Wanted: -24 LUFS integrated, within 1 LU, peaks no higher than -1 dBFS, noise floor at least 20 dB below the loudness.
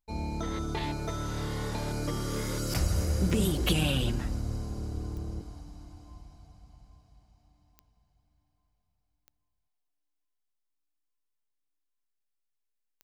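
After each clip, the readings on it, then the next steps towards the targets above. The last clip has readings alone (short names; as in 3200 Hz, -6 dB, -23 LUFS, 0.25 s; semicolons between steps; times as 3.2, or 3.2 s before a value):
clicks 5; loudness -31.5 LUFS; peak -13.5 dBFS; loudness target -24.0 LUFS
-> de-click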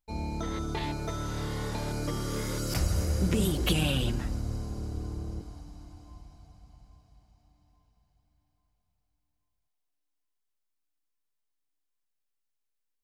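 clicks 0; loudness -31.5 LUFS; peak -13.5 dBFS; loudness target -24.0 LUFS
-> gain +7.5 dB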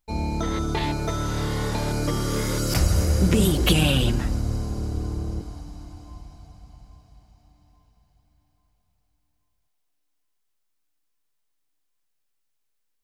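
loudness -24.0 LUFS; peak -6.0 dBFS; noise floor -73 dBFS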